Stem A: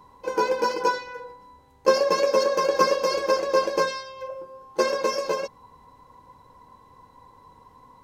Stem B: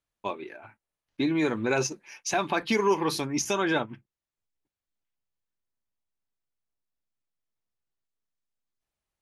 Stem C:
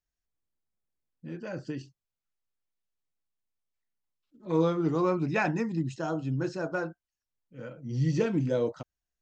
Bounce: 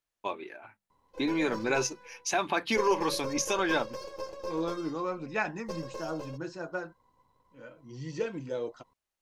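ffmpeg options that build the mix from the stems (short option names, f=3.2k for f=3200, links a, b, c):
-filter_complex "[0:a]aeval=exprs='if(lt(val(0),0),0.447*val(0),val(0))':c=same,equalizer=f=1.8k:w=1.4:g=-5.5,adelay=900,volume=-14dB[a];[1:a]lowshelf=f=210:g=-8.5,bandreject=f=50:t=h:w=6,bandreject=f=100:t=h:w=6,bandreject=f=150:t=h:w=6,bandreject=f=200:t=h:w=6,volume=-1dB[b];[2:a]lowshelf=f=240:g=-11.5,flanger=delay=1.8:depth=4.8:regen=54:speed=0.24:shape=triangular,volume=0.5dB[c];[a][b][c]amix=inputs=3:normalize=0"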